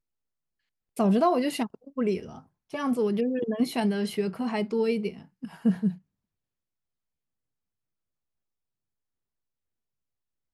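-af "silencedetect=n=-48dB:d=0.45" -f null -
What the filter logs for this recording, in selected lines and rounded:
silence_start: 0.00
silence_end: 0.96 | silence_duration: 0.96
silence_start: 5.98
silence_end: 10.53 | silence_duration: 4.55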